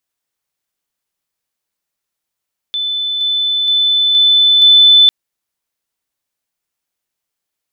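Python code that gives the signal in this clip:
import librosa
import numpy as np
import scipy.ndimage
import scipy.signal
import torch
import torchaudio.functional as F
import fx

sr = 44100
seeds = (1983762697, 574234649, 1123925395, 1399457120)

y = fx.level_ladder(sr, hz=3510.0, from_db=-15.5, step_db=3.0, steps=5, dwell_s=0.47, gap_s=0.0)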